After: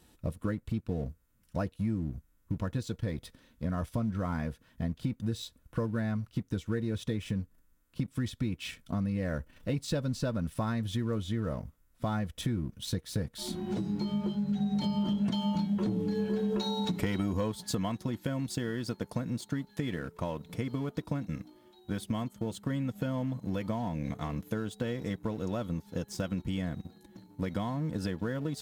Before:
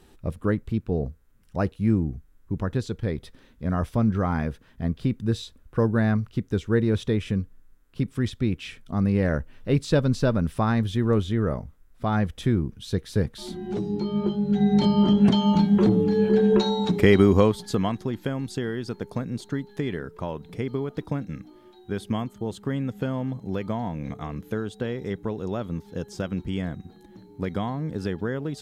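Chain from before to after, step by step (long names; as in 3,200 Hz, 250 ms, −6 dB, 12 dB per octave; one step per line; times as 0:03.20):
leveller curve on the samples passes 1
high-shelf EQ 5,200 Hz +8 dB
notch comb filter 400 Hz
downward compressor 4 to 1, threshold −26 dBFS, peak gain reduction 13 dB
level −3.5 dB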